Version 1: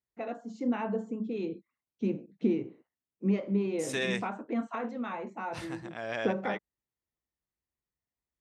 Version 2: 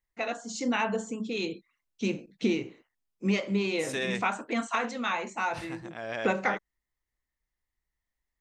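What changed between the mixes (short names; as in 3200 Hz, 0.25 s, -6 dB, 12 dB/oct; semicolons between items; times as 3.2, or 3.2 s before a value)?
first voice: remove band-pass 240 Hz, Q 0.52; master: remove HPF 59 Hz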